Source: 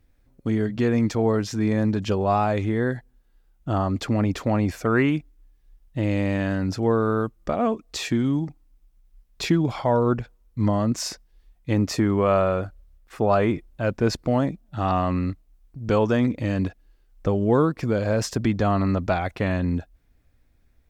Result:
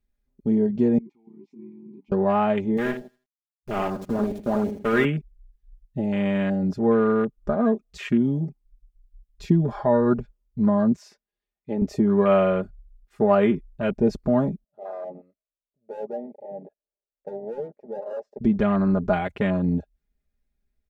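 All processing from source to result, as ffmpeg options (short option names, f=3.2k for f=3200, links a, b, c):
-filter_complex "[0:a]asettb=1/sr,asplit=3[a][b][c];[a]atrim=end=0.984[d];[b]atrim=start=0.98:end=2.12,asetpts=PTS-STARTPTS,afade=t=in:d=0.004:c=qsin,afade=t=out:st=1.136:d=0.004:c=qsin,aeval=exprs='sgn(val(0))*max(abs(val(0))-0.00708,0)':c=same,acompressor=threshold=-31dB:ratio=3:attack=3.2:release=140:knee=1:detection=peak,asplit=3[e][f][g];[e]bandpass=f=300:t=q:w=8,volume=0dB[h];[f]bandpass=f=870:t=q:w=8,volume=-6dB[i];[g]bandpass=f=2.24k:t=q:w=8,volume=-9dB[j];[h][i][j]amix=inputs=3:normalize=0[k];[c]atrim=start=2.116[l];[d][k]acrossfade=d=0.004:c1=hsin:c2=qsin[m];[m][l]acrossfade=d=0.004:c1=qsin:c2=hsin,asettb=1/sr,asplit=3[n][o][p];[n]atrim=end=2.774[q];[o]atrim=start=2.77:end=5.05,asetpts=PTS-STARTPTS,afade=t=in:d=0.004:c=qsin,afade=t=out:st=2.276:d=0.004:c=qsin,equalizer=f=150:w=0.46:g=-4.5,aeval=exprs='val(0)*gte(abs(val(0)),0.0501)':c=same,aecho=1:1:80|160|240|320:0.422|0.148|0.0517|0.0181,atrim=end_sample=100548[r];[p]atrim=start=5.046[s];[q][r]acrossfade=d=0.004:c1=hsin:c2=qsin[t];[t][s]acrossfade=d=0.004:c1=qsin:c2=hsin,asettb=1/sr,asplit=3[u][v][w];[u]atrim=end=10.964[x];[v]atrim=start=10.96:end=11.82,asetpts=PTS-STARTPTS,afade=t=in:d=0.004:c=qsin,afade=t=out:st=0.856:d=0.004:c=qsin,highpass=93,bass=f=250:g=-10,treble=f=4k:g=-9[y];[w]atrim=start=11.816[z];[x][y]acrossfade=d=0.004:c1=hsin:c2=qsin[aa];[aa][z]acrossfade=d=0.004:c1=qsin:c2=hsin,asettb=1/sr,asplit=3[ab][ac][ad];[ab]atrim=end=14.644[ae];[ac]atrim=start=14.64:end=18.41,asetpts=PTS-STARTPTS,afade=t=in:d=0.004:c=qsin,afade=t=out:st=3.766:d=0.004:c=qsin,bandpass=f=560:t=q:w=5.2,asoftclip=type=hard:threshold=-28dB[af];[ad]atrim=start=18.406[ag];[ae][af]acrossfade=d=0.004:c1=hsin:c2=qsin[ah];[ah][ag]acrossfade=d=0.004:c1=qsin:c2=hsin,afwtdn=0.0282,equalizer=f=1.1k:t=o:w=1.4:g=-3.5,aecho=1:1:4.9:0.8"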